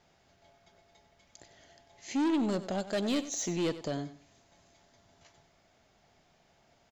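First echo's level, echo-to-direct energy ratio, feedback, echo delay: -14.0 dB, -13.5 dB, 24%, 95 ms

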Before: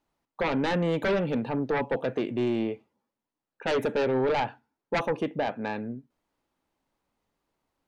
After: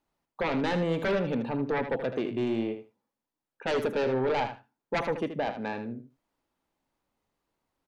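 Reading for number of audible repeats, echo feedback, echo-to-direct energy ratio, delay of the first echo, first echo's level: 2, 15%, -10.0 dB, 78 ms, -10.0 dB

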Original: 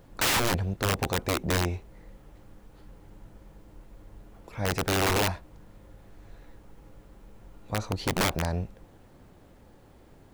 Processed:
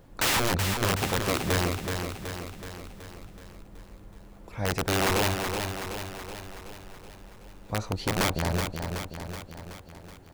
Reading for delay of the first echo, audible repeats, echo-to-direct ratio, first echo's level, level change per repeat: 0.375 s, 7, -4.0 dB, -6.0 dB, -4.5 dB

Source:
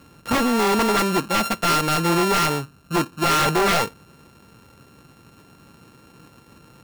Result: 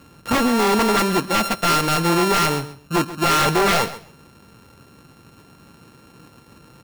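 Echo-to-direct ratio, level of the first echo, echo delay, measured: -15.0 dB, -15.0 dB, 0.133 s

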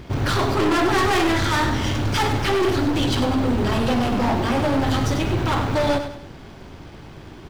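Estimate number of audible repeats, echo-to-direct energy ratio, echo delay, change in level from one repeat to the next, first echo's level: 3, -8.5 dB, 98 ms, -8.5 dB, -9.0 dB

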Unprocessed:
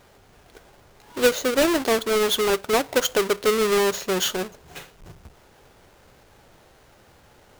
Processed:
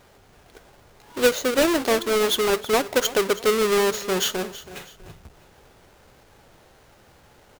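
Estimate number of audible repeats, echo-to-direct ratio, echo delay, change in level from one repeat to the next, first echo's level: 2, -15.5 dB, 0.325 s, -9.0 dB, -16.0 dB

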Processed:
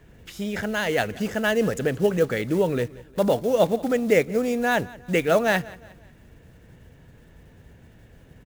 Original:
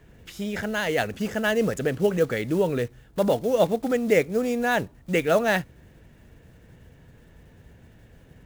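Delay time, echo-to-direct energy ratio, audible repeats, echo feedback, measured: 0.179 s, -20.0 dB, 2, 42%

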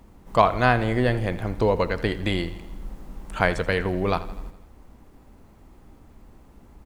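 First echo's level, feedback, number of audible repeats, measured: -16.0 dB, 58%, 5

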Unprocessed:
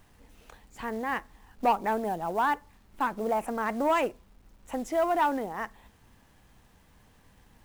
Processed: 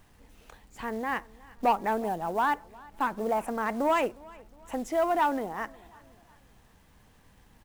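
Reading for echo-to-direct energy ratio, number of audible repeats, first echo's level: -22.5 dB, 2, -23.5 dB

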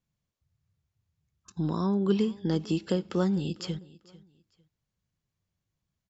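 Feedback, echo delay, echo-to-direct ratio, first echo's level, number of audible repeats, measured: 26%, 0.448 s, -20.5 dB, -21.0 dB, 2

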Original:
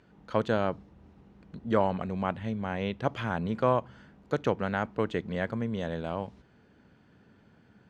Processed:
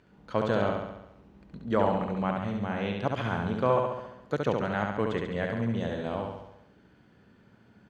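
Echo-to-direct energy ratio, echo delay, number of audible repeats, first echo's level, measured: -1.5 dB, 69 ms, 7, -3.5 dB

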